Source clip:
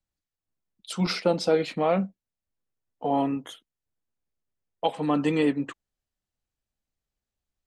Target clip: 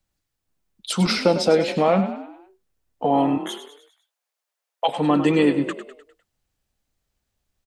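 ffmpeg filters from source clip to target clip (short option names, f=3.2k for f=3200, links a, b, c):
-filter_complex "[0:a]asplit=3[a][b][c];[a]afade=t=out:st=3.37:d=0.02[d];[b]highpass=f=580:w=0.5412,highpass=f=580:w=1.3066,afade=t=in:st=3.37:d=0.02,afade=t=out:st=4.87:d=0.02[e];[c]afade=t=in:st=4.87:d=0.02[f];[d][e][f]amix=inputs=3:normalize=0,asplit=2[g][h];[h]acompressor=threshold=-32dB:ratio=6,volume=2.5dB[i];[g][i]amix=inputs=2:normalize=0,asplit=6[j][k][l][m][n][o];[k]adelay=101,afreqshift=37,volume=-11dB[p];[l]adelay=202,afreqshift=74,volume=-17.4dB[q];[m]adelay=303,afreqshift=111,volume=-23.8dB[r];[n]adelay=404,afreqshift=148,volume=-30.1dB[s];[o]adelay=505,afreqshift=185,volume=-36.5dB[t];[j][p][q][r][s][t]amix=inputs=6:normalize=0,volume=2.5dB"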